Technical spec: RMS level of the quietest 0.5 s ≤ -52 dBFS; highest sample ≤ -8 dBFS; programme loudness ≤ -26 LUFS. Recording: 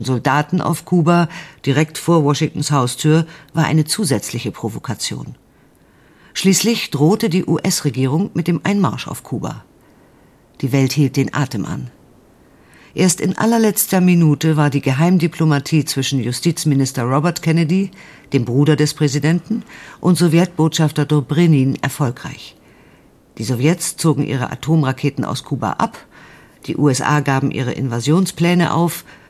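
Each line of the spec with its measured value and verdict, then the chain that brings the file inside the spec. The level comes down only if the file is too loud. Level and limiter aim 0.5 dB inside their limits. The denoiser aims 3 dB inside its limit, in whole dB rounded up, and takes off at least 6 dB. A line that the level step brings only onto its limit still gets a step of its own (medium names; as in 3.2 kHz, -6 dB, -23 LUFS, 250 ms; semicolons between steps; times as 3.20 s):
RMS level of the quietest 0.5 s -51 dBFS: fail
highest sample -2.0 dBFS: fail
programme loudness -16.5 LUFS: fail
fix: trim -10 dB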